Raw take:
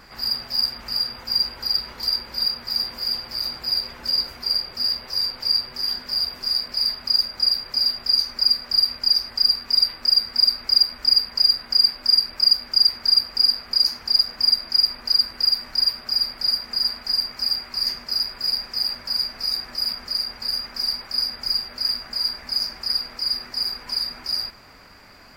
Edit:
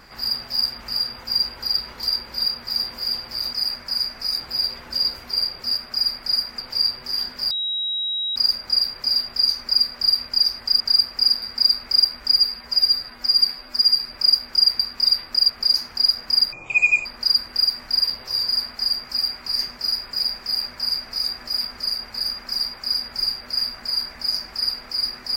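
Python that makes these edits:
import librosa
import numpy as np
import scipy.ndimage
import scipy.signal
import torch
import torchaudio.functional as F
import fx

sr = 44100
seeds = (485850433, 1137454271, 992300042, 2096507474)

y = fx.edit(x, sr, fx.swap(start_s=4.9, length_s=0.4, other_s=15.92, other_length_s=0.83),
    fx.bleep(start_s=6.21, length_s=0.85, hz=3840.0, db=-22.0),
    fx.swap(start_s=9.5, length_s=0.7, other_s=12.98, other_length_s=0.62),
    fx.stretch_span(start_s=11.12, length_s=1.19, factor=1.5),
    fx.speed_span(start_s=14.63, length_s=0.27, speed=0.51),
    fx.duplicate(start_s=18.72, length_s=0.87, to_s=3.53), tone=tone)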